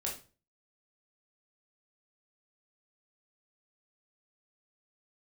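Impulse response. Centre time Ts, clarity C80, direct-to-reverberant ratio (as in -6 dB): 27 ms, 13.5 dB, -3.0 dB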